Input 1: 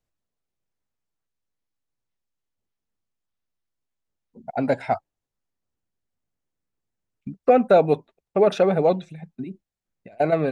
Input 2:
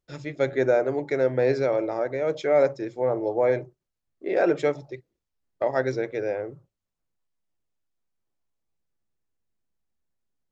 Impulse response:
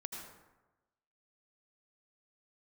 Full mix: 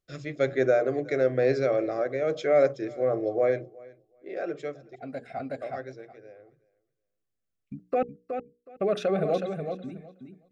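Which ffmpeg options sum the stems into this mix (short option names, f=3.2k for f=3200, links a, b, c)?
-filter_complex "[0:a]alimiter=limit=-12dB:level=0:latency=1:release=14,adelay=450,volume=-5.5dB,asplit=3[a][b][c];[a]atrim=end=8.03,asetpts=PTS-STARTPTS,afade=t=out:st=8.026:d=0.004:c=hsin[d];[b]atrim=start=8.03:end=8.72,asetpts=PTS-STARTPTS,volume=0[e];[c]atrim=start=8.72,asetpts=PTS-STARTPTS,afade=t=in:d=0.004:c=hsin[f];[d][e][f]concat=n=3:v=0:a=1,asplit=2[g][h];[h]volume=-7dB[i];[1:a]volume=-1dB,afade=t=out:st=3.38:d=0.48:silence=0.316228,afade=t=out:st=5.58:d=0.59:silence=0.316228,asplit=3[j][k][l];[k]volume=-23dB[m];[l]apad=whole_len=483639[n];[g][n]sidechaincompress=threshold=-43dB:ratio=4:attack=16:release=1260[o];[i][m]amix=inputs=2:normalize=0,aecho=0:1:369|738|1107:1|0.15|0.0225[p];[o][j][p]amix=inputs=3:normalize=0,asuperstop=centerf=910:order=8:qfactor=4,bandreject=f=60:t=h:w=6,bandreject=f=120:t=h:w=6,bandreject=f=180:t=h:w=6,bandreject=f=240:t=h:w=6,bandreject=f=300:t=h:w=6,bandreject=f=360:t=h:w=6,bandreject=f=420:t=h:w=6,bandreject=f=480:t=h:w=6"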